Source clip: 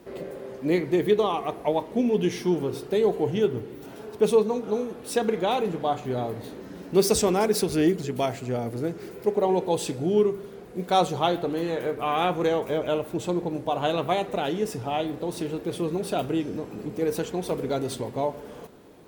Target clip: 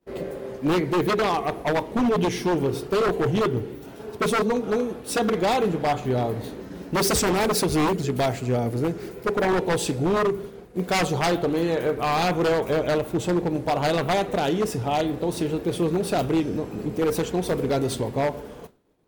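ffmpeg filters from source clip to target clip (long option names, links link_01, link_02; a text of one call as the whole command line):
ffmpeg -i in.wav -af "lowshelf=frequency=78:gain=9.5,aeval=exprs='0.1*(abs(mod(val(0)/0.1+3,4)-2)-1)':channel_layout=same,agate=range=-33dB:threshold=-36dB:ratio=3:detection=peak,volume=4dB" out.wav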